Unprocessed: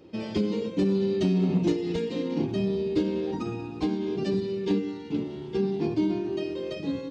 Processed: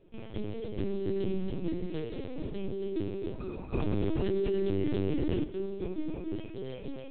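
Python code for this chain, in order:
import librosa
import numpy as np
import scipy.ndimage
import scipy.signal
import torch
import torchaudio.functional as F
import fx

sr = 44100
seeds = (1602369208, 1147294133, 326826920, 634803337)

y = x + 10.0 ** (-4.0 / 20.0) * np.pad(x, (int(277 * sr / 1000.0), 0))[:len(x)]
y = fx.lpc_vocoder(y, sr, seeds[0], excitation='pitch_kept', order=8)
y = fx.env_flatten(y, sr, amount_pct=100, at=(3.72, 5.43), fade=0.02)
y = F.gain(torch.from_numpy(y), -8.5).numpy()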